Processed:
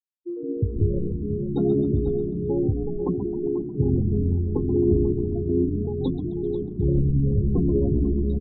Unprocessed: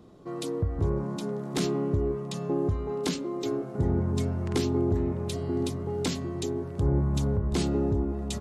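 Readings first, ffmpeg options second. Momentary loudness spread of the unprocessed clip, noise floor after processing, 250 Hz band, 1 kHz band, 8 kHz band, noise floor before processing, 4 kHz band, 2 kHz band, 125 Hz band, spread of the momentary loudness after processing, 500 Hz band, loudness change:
6 LU, −33 dBFS, +5.5 dB, −7.5 dB, below −40 dB, −37 dBFS, below −15 dB, below −30 dB, +5.0 dB, 6 LU, +4.5 dB, +5.0 dB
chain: -filter_complex "[0:a]afftfilt=real='re*gte(hypot(re,im),0.0794)':imag='im*gte(hypot(re,im),0.0794)':win_size=1024:overlap=0.75,equalizer=frequency=7600:width_type=o:width=0.4:gain=-4,asplit=2[link_01][link_02];[link_02]asplit=7[link_03][link_04][link_05][link_06][link_07][link_08][link_09];[link_03]adelay=132,afreqshift=-59,volume=-9dB[link_10];[link_04]adelay=264,afreqshift=-118,volume=-13.7dB[link_11];[link_05]adelay=396,afreqshift=-177,volume=-18.5dB[link_12];[link_06]adelay=528,afreqshift=-236,volume=-23.2dB[link_13];[link_07]adelay=660,afreqshift=-295,volume=-27.9dB[link_14];[link_08]adelay=792,afreqshift=-354,volume=-32.7dB[link_15];[link_09]adelay=924,afreqshift=-413,volume=-37.4dB[link_16];[link_10][link_11][link_12][link_13][link_14][link_15][link_16]amix=inputs=7:normalize=0[link_17];[link_01][link_17]amix=inputs=2:normalize=0,flanger=delay=5.1:depth=9.2:regen=43:speed=0.3:shape=sinusoidal,asplit=2[link_18][link_19];[link_19]aecho=0:1:491:0.266[link_20];[link_18][link_20]amix=inputs=2:normalize=0,acontrast=59,anlmdn=0.398,volume=2dB"

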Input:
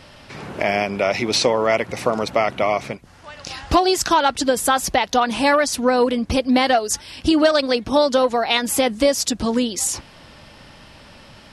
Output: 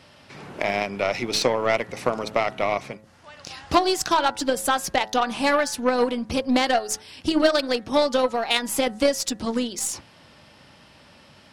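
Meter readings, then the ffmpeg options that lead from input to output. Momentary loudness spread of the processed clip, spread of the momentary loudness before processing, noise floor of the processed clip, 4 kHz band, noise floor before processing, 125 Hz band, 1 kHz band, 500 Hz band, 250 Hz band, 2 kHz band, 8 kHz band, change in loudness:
8 LU, 8 LU, −52 dBFS, −4.0 dB, −46 dBFS, −6.0 dB, −4.5 dB, −4.5 dB, −5.0 dB, −3.5 dB, −5.0 dB, −4.5 dB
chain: -af "highpass=82,bandreject=frequency=107.7:width_type=h:width=4,bandreject=frequency=215.4:width_type=h:width=4,bandreject=frequency=323.1:width_type=h:width=4,bandreject=frequency=430.8:width_type=h:width=4,bandreject=frequency=538.5:width_type=h:width=4,bandreject=frequency=646.2:width_type=h:width=4,bandreject=frequency=753.9:width_type=h:width=4,bandreject=frequency=861.6:width_type=h:width=4,bandreject=frequency=969.3:width_type=h:width=4,bandreject=frequency=1077:width_type=h:width=4,bandreject=frequency=1184.7:width_type=h:width=4,bandreject=frequency=1292.4:width_type=h:width=4,bandreject=frequency=1400.1:width_type=h:width=4,bandreject=frequency=1507.8:width_type=h:width=4,bandreject=frequency=1615.5:width_type=h:width=4,bandreject=frequency=1723.2:width_type=h:width=4,bandreject=frequency=1830.9:width_type=h:width=4,bandreject=frequency=1938.6:width_type=h:width=4,aeval=exprs='0.708*(cos(1*acos(clip(val(0)/0.708,-1,1)))-cos(1*PI/2))+0.1*(cos(3*acos(clip(val(0)/0.708,-1,1)))-cos(3*PI/2))+0.0158*(cos(6*acos(clip(val(0)/0.708,-1,1)))-cos(6*PI/2))+0.00891*(cos(7*acos(clip(val(0)/0.708,-1,1)))-cos(7*PI/2))':channel_layout=same"

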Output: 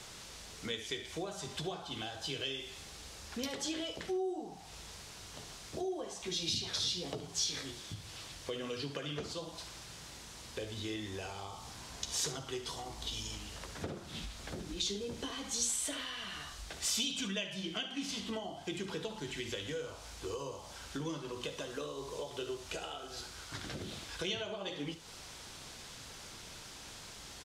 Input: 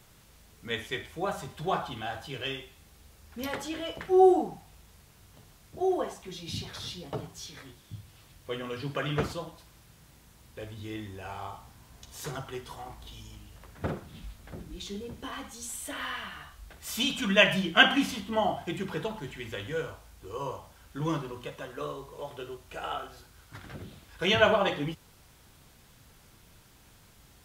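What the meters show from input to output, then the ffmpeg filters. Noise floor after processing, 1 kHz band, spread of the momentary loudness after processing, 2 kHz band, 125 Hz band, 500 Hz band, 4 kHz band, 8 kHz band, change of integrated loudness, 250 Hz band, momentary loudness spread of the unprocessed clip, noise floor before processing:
−50 dBFS, −13.5 dB, 14 LU, −13.5 dB, −7.5 dB, −10.5 dB, −4.0 dB, +5.5 dB, −9.0 dB, −8.5 dB, 24 LU, −58 dBFS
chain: -filter_complex "[0:a]acompressor=threshold=-42dB:ratio=5,lowpass=5100,bass=frequency=250:gain=-8,treble=frequency=4000:gain=12,acrossover=split=490|3000[link_01][link_02][link_03];[link_02]acompressor=threshold=-56dB:ratio=6[link_04];[link_01][link_04][link_03]amix=inputs=3:normalize=0,aecho=1:1:72:0.188,volume=8.5dB"

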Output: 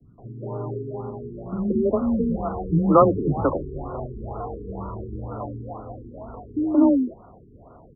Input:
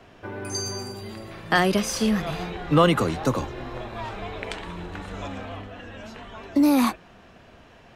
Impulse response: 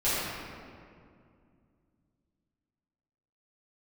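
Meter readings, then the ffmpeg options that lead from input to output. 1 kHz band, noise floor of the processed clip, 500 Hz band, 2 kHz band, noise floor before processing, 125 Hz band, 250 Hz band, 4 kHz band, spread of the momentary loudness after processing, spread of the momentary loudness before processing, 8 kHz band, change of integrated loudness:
+0.5 dB, −50 dBFS, +3.5 dB, −20.5 dB, −51 dBFS, +1.5 dB, +2.0 dB, below −40 dB, 19 LU, 19 LU, below −40 dB, +1.0 dB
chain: -filter_complex "[0:a]afreqshift=19,acrossover=split=250|2100[link_01][link_02][link_03];[link_03]adelay=50[link_04];[link_02]adelay=180[link_05];[link_01][link_05][link_04]amix=inputs=3:normalize=0,afftfilt=real='re*lt(b*sr/1024,430*pow(1500/430,0.5+0.5*sin(2*PI*2.1*pts/sr)))':imag='im*lt(b*sr/1024,430*pow(1500/430,0.5+0.5*sin(2*PI*2.1*pts/sr)))':win_size=1024:overlap=0.75,volume=4.5dB"

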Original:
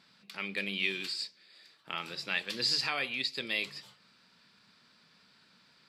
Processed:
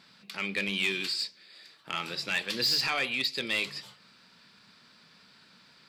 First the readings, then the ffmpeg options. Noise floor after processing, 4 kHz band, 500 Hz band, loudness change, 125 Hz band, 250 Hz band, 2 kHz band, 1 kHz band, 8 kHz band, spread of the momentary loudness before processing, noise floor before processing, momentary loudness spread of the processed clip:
−59 dBFS, +3.5 dB, +4.0 dB, +3.5 dB, +4.5 dB, +4.5 dB, +3.5 dB, +4.0 dB, +5.0 dB, 11 LU, −65 dBFS, 11 LU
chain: -af "asoftclip=type=tanh:threshold=-25.5dB,volume=5.5dB"

